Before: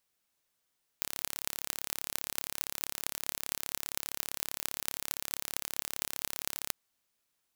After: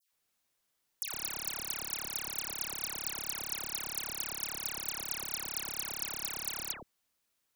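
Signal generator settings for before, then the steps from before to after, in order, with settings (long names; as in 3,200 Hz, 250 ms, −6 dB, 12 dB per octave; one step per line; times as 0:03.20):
impulse train 35.2 per second, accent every 8, −3 dBFS 5.69 s
all-pass dispersion lows, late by 125 ms, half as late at 1,800 Hz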